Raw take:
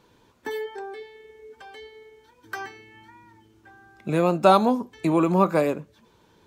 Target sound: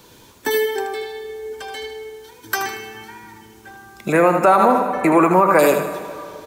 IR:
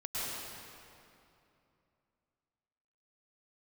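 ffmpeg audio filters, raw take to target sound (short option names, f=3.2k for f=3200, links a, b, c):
-filter_complex "[0:a]asettb=1/sr,asplit=3[a][b][c];[a]atrim=end=4.124[d];[b]atrim=start=4.12:end=5.59,asetpts=PTS-STARTPTS,afade=t=in:d=0.004:c=qsin,afade=t=out:st=1.466:d=0.004:c=qsin,highshelf=f=2.6k:t=q:w=3:g=-10.5[e];[c]atrim=start=5.586[f];[d][e]acrossfade=d=0.004:c1=hsin:c2=qsin[g];[g][f]acrossfade=d=0.004:c1=qsin:c2=hsin,acrossover=split=300|1600[h][i][j];[h]acompressor=threshold=-38dB:ratio=6[k];[j]crystalizer=i=2.5:c=0[l];[k][i][l]amix=inputs=3:normalize=0,aecho=1:1:78|156|234|312|390:0.376|0.173|0.0795|0.0366|0.0168,asplit=2[m][n];[1:a]atrim=start_sample=2205,adelay=67[o];[n][o]afir=irnorm=-1:irlink=0,volume=-20.5dB[p];[m][p]amix=inputs=2:normalize=0,alimiter=level_in=13.5dB:limit=-1dB:release=50:level=0:latency=1,volume=-3.5dB"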